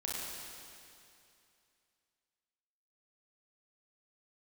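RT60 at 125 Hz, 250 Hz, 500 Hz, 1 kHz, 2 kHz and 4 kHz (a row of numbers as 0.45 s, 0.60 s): 2.6 s, 2.6 s, 2.6 s, 2.6 s, 2.6 s, 2.5 s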